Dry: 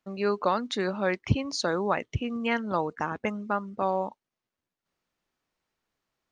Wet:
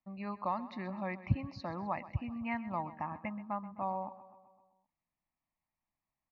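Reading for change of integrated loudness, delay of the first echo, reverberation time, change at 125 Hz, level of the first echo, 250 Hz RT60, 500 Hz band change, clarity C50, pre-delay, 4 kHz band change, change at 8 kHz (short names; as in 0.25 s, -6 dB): -9.5 dB, 0.129 s, none, -5.5 dB, -16.0 dB, none, -15.0 dB, none, none, -21.0 dB, under -30 dB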